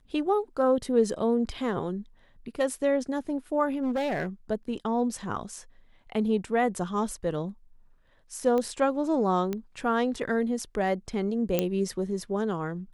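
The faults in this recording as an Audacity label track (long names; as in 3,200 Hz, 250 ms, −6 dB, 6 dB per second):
3.820000	4.270000	clipping −24 dBFS
8.580000	8.580000	click −18 dBFS
9.530000	9.530000	click −18 dBFS
11.590000	11.590000	click −10 dBFS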